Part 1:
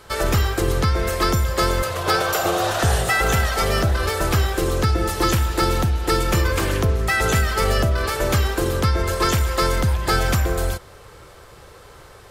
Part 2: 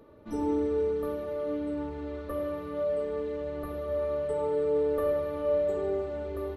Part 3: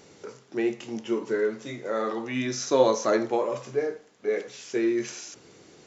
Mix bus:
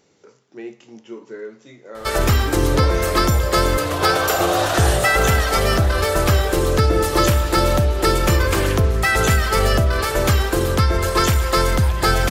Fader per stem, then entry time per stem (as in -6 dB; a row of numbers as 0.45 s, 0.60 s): +2.5 dB, +2.5 dB, -7.5 dB; 1.95 s, 2.15 s, 0.00 s